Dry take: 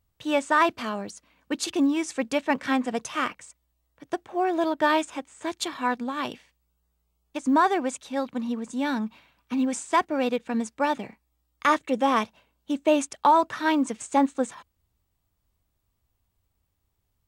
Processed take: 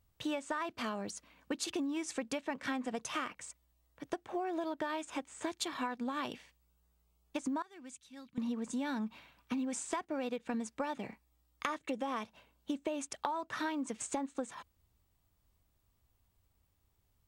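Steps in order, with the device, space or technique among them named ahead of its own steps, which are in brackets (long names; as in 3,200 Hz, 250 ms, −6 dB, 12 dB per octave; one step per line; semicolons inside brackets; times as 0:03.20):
0:07.62–0:08.38: guitar amp tone stack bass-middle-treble 6-0-2
serial compression, leveller first (downward compressor 2.5 to 1, threshold −24 dBFS, peak gain reduction 7 dB; downward compressor 6 to 1, threshold −34 dBFS, peak gain reduction 12.5 dB)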